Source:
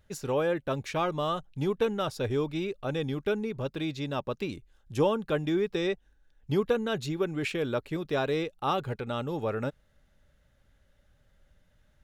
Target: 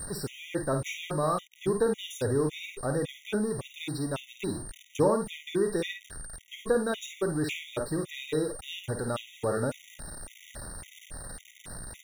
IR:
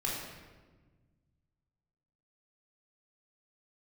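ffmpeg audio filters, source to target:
-filter_complex "[0:a]aeval=exprs='val(0)+0.5*0.015*sgn(val(0))':c=same,aeval=exprs='val(0)+0.0158*sin(2*PI*8800*n/s)':c=same,asplit=2[s0][s1];[s1]aecho=0:1:52|72:0.447|0.211[s2];[s0][s2]amix=inputs=2:normalize=0,afftfilt=real='re*gt(sin(2*PI*1.8*pts/sr)*(1-2*mod(floor(b*sr/1024/1900),2)),0)':imag='im*gt(sin(2*PI*1.8*pts/sr)*(1-2*mod(floor(b*sr/1024/1900),2)),0)':win_size=1024:overlap=0.75"

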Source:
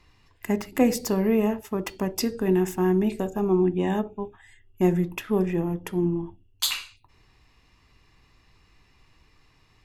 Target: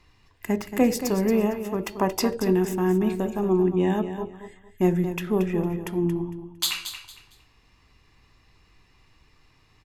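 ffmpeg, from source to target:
-filter_complex "[0:a]asettb=1/sr,asplit=3[s0][s1][s2];[s0]atrim=end=1.974[s3];[s1]atrim=start=1.97:end=2.37,asetpts=PTS-STARTPTS,afade=t=in:d=0.004:c=qsin,afade=t=out:st=0.396:d=0.004:c=qsin,equalizer=f=920:t=o:w=1.7:g=11.5[s4];[s2]atrim=start=2.366[s5];[s3][s4]acrossfade=d=0.004:c1=hsin:c2=qsin[s6];[s6][s5]acrossfade=d=0.004:c1=qsin:c2=hsin,asplit=2[s7][s8];[s8]aecho=0:1:228|456|684:0.316|0.0822|0.0214[s9];[s7][s9]amix=inputs=2:normalize=0"

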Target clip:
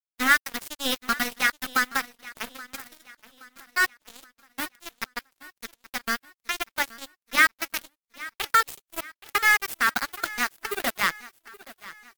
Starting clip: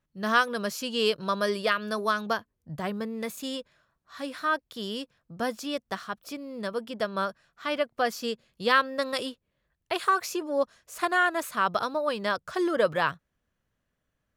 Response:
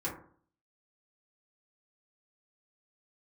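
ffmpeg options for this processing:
-filter_complex "[0:a]bandreject=f=60:t=h:w=6,bandreject=f=120:t=h:w=6,bandreject=f=180:t=h:w=6,bandreject=f=240:t=h:w=6,bandreject=f=300:t=h:w=6,bandreject=f=360:t=h:w=6,bandreject=f=420:t=h:w=6,bandreject=f=480:t=h:w=6,acrossover=split=1800[s0][s1];[s0]acrusher=bits=5:mode=log:mix=0:aa=0.000001[s2];[s2][s1]amix=inputs=2:normalize=0,firequalizer=gain_entry='entry(210,0);entry(540,-15);entry(930,-3);entry(2100,4);entry(5300,-14);entry(15000,1)':delay=0.05:min_phase=1,asetrate=52038,aresample=44100,asplit=2[s3][s4];[s4]asoftclip=type=hard:threshold=0.0531,volume=0.251[s5];[s3][s5]amix=inputs=2:normalize=0,highshelf=f=5700:t=q:w=1.5:g=10,acrusher=bits=3:mix=0:aa=0.5,aecho=1:1:824|1648|2472|3296:0.112|0.0505|0.0227|0.0102,volume=1.58" -ar 48000 -c:a libvorbis -b:a 96k

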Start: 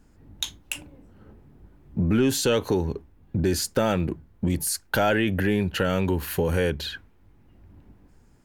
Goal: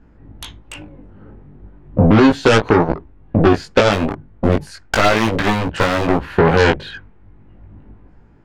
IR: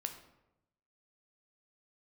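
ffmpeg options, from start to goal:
-filter_complex "[0:a]lowpass=2200,aeval=exprs='0.282*(cos(1*acos(clip(val(0)/0.282,-1,1)))-cos(1*PI/2))+0.0447*(cos(5*acos(clip(val(0)/0.282,-1,1)))-cos(5*PI/2))+0.1*(cos(7*acos(clip(val(0)/0.282,-1,1)))-cos(7*PI/2))':c=same,asettb=1/sr,asplit=3[s0][s1][s2];[s0]atrim=end=3.914[s3];[s1]atrim=start=3.91:end=6.31,asetpts=PTS-STARTPTS,afade=t=in:d=0.004:c=qsin,afade=t=out:st=2.396:d=0.004:c=qsin,aeval=exprs='clip(val(0),-1,0.0596)':c=same[s4];[s2]atrim=start=6.306[s5];[s3][s4]acrossfade=d=0.004:c1=hsin:c2=qsin[s6];[s6][s5]acrossfade=d=0.004:c1=qsin:c2=hsin,flanger=delay=18:depth=2.4:speed=0.35,alimiter=level_in=6.31:limit=0.891:release=50:level=0:latency=1,volume=0.891"

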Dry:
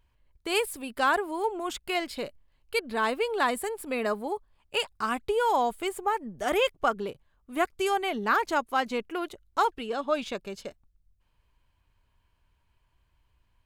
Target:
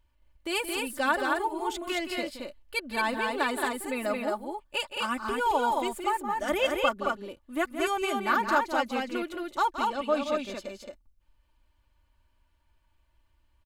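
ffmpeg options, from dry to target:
-filter_complex "[0:a]aecho=1:1:3.4:0.69,asplit=2[s0][s1];[s1]aecho=0:1:172|221.6:0.316|0.708[s2];[s0][s2]amix=inputs=2:normalize=0,volume=0.668"

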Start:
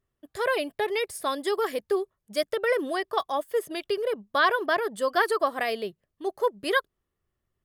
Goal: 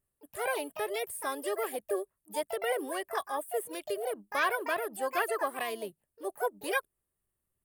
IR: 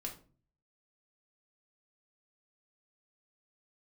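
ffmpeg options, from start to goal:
-filter_complex "[0:a]highshelf=f=7100:t=q:w=3:g=11,acrossover=split=5000[s0][s1];[s1]acompressor=threshold=0.0224:ratio=4:attack=1:release=60[s2];[s0][s2]amix=inputs=2:normalize=0,asplit=2[s3][s4];[s4]asetrate=66075,aresample=44100,atempo=0.66742,volume=0.501[s5];[s3][s5]amix=inputs=2:normalize=0,volume=0.422"

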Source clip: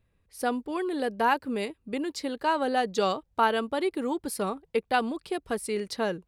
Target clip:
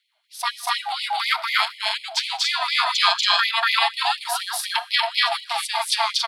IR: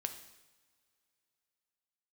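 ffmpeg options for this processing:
-filter_complex "[0:a]equalizer=f=3700:t=o:w=0.79:g=14.5,aecho=1:1:239.1|279.9:1|0.708,aeval=exprs='val(0)*sin(2*PI*460*n/s)':c=same,asplit=2[s0][s1];[1:a]atrim=start_sample=2205[s2];[s1][s2]afir=irnorm=-1:irlink=0,volume=0.631[s3];[s0][s3]amix=inputs=2:normalize=0,afftfilt=real='re*gte(b*sr/1024,570*pow(2000/570,0.5+0.5*sin(2*PI*4.1*pts/sr)))':imag='im*gte(b*sr/1024,570*pow(2000/570,0.5+0.5*sin(2*PI*4.1*pts/sr)))':win_size=1024:overlap=0.75,volume=1.58"

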